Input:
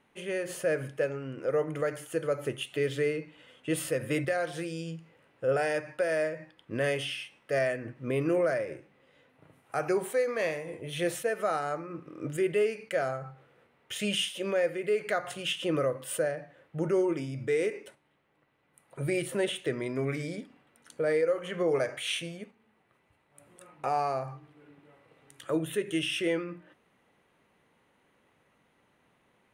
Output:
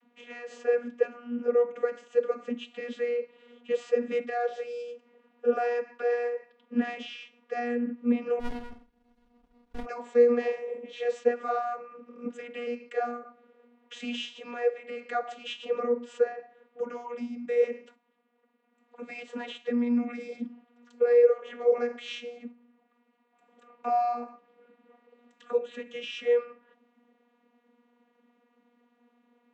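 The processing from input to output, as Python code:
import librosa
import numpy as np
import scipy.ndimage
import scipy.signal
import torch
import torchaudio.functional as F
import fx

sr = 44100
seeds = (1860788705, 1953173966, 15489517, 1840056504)

y = fx.vocoder(x, sr, bands=32, carrier='saw', carrier_hz=240.0)
y = fx.running_max(y, sr, window=65, at=(8.39, 9.85), fade=0.02)
y = F.gain(torch.from_numpy(y), 2.5).numpy()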